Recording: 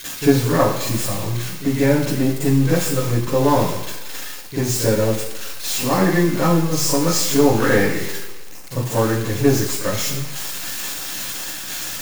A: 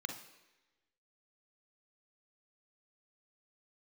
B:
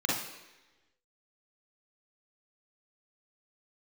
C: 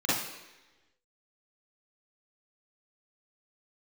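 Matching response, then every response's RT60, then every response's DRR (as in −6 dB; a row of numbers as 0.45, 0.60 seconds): C; 1.1, 1.1, 1.1 seconds; 4.0, −5.5, −10.5 decibels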